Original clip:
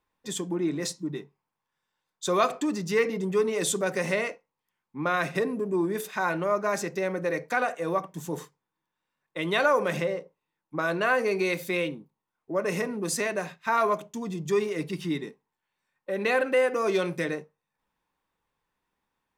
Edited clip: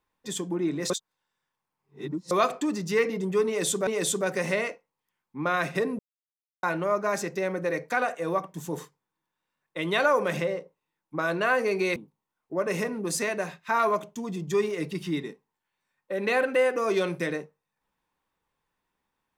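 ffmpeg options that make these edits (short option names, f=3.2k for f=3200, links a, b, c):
-filter_complex "[0:a]asplit=7[a][b][c][d][e][f][g];[a]atrim=end=0.902[h];[b]atrim=start=0.898:end=2.312,asetpts=PTS-STARTPTS,areverse[i];[c]atrim=start=2.308:end=3.872[j];[d]atrim=start=3.468:end=5.59,asetpts=PTS-STARTPTS,afade=t=out:st=2.118:d=0.004:c=hsin[k];[e]atrim=start=5.59:end=6.23,asetpts=PTS-STARTPTS,volume=0[l];[f]atrim=start=6.23:end=11.562,asetpts=PTS-STARTPTS,afade=t=in:d=0.004:c=hsin[m];[g]atrim=start=11.938[n];[h][i]acrossfade=d=0.004:c1=hsin:c2=hsin[o];[o][j]acrossfade=d=0.004:c1=hsin:c2=hsin[p];[k][l][m]concat=n=3:v=0:a=1[q];[p][q]acrossfade=d=0.004:c1=hsin:c2=hsin[r];[r][n]acrossfade=d=0.004:c1=hsin:c2=hsin"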